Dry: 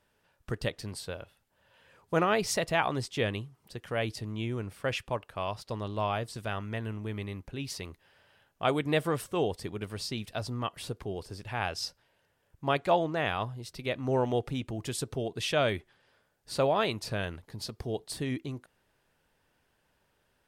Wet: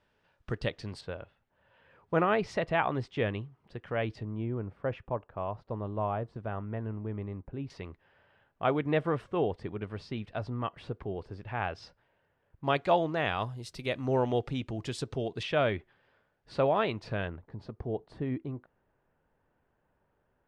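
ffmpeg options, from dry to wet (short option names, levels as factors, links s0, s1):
-af "asetnsamples=n=441:p=0,asendcmd='1.01 lowpass f 2300;4.23 lowpass f 1100;7.7 lowpass f 2100;12.64 lowpass f 5200;13.39 lowpass f 10000;14.06 lowpass f 5200;15.43 lowpass f 2600;17.28 lowpass f 1300',lowpass=4200"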